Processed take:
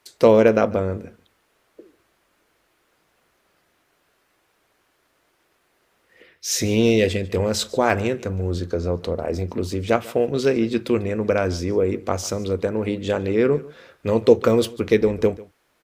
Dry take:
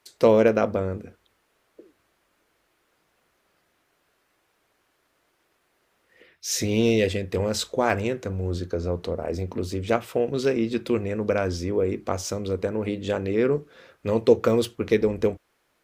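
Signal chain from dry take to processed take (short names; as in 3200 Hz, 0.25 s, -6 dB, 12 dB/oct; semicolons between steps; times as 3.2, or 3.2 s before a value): echo 0.145 s -20.5 dB; gain +3.5 dB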